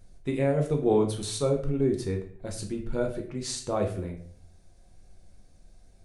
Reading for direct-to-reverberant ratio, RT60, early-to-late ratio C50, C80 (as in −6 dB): 2.0 dB, 0.55 s, 8.5 dB, 12.5 dB